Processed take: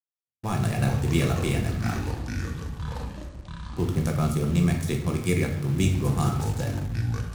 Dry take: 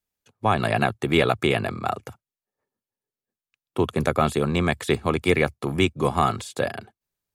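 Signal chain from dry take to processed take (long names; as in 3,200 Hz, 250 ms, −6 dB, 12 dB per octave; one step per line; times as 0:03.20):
adaptive Wiener filter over 9 samples
noise gate −45 dBFS, range −39 dB
drawn EQ curve 150 Hz 0 dB, 580 Hz −15 dB, 3,600 Hz −10 dB, 5,600 Hz +5 dB
on a send: tape delay 159 ms, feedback 87%, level −22 dB, low-pass 1,700 Hz
on the sum: rectangular room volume 170 cubic metres, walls mixed, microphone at 0.78 metres
in parallel at −5.5 dB: bit reduction 6 bits
on the sum: delay with pitch and tempo change per echo 127 ms, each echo −7 semitones, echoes 2, each echo −6 dB
level −3 dB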